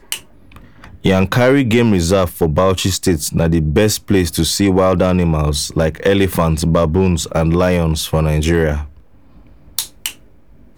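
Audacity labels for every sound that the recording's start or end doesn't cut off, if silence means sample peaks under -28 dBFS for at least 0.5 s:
9.780000	10.120000	sound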